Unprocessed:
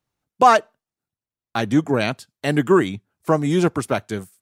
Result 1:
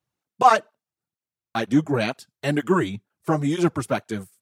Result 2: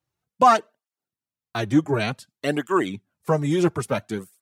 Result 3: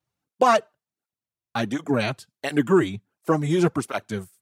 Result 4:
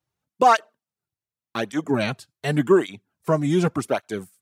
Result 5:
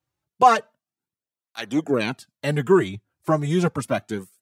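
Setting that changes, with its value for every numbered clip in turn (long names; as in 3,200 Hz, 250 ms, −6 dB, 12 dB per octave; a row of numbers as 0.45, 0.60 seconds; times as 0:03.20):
through-zero flanger with one copy inverted, nulls at: 2.1, 0.56, 1.4, 0.87, 0.32 Hertz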